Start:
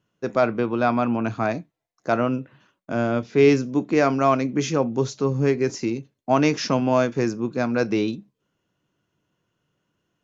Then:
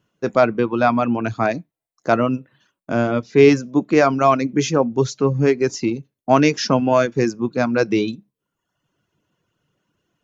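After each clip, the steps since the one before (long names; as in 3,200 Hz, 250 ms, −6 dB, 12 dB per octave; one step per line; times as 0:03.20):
reverb reduction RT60 0.82 s
level +5 dB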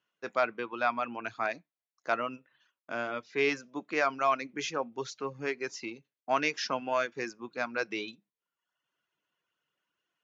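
resonant band-pass 2,200 Hz, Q 0.7
level −6.5 dB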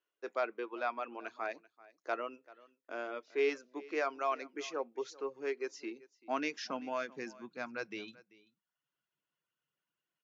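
high-pass filter sweep 370 Hz → 130 Hz, 0:05.48–0:08.04
single-tap delay 388 ms −21 dB
level −8.5 dB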